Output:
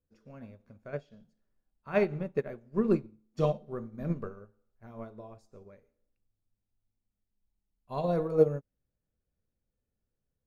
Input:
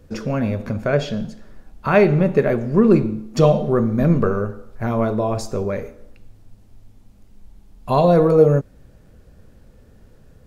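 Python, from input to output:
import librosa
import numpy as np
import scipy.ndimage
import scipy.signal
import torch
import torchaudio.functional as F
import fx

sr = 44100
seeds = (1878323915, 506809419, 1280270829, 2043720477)

y = fx.upward_expand(x, sr, threshold_db=-27.0, expansion=2.5)
y = y * 10.0 ** (-8.0 / 20.0)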